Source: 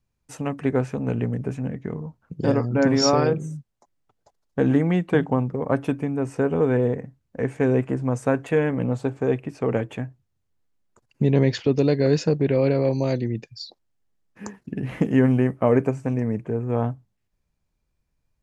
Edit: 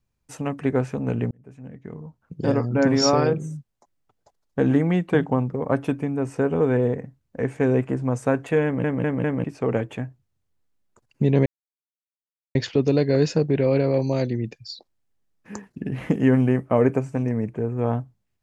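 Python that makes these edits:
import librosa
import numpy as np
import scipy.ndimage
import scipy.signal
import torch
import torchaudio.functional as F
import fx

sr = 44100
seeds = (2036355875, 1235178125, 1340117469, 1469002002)

y = fx.edit(x, sr, fx.fade_in_span(start_s=1.31, length_s=1.31),
    fx.stutter_over(start_s=8.64, slice_s=0.2, count=4),
    fx.insert_silence(at_s=11.46, length_s=1.09), tone=tone)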